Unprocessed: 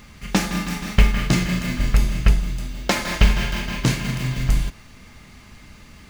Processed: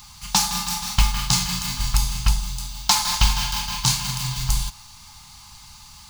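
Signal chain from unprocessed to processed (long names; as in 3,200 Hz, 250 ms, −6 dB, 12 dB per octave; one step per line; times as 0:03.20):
drawn EQ curve 140 Hz 0 dB, 510 Hz −26 dB, 850 Hz +12 dB, 1,900 Hz −5 dB, 4,300 Hz +14 dB
level −4 dB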